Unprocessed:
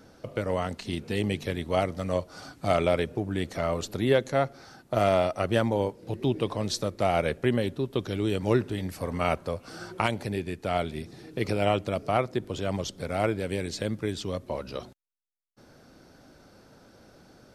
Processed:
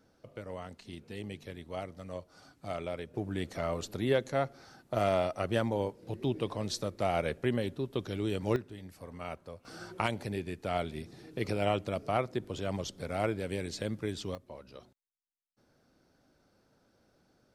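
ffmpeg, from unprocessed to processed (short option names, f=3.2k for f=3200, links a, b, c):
-af "asetnsamples=n=441:p=0,asendcmd='3.14 volume volume -5.5dB;8.56 volume volume -14.5dB;9.65 volume volume -5dB;14.35 volume volume -14.5dB',volume=-13.5dB"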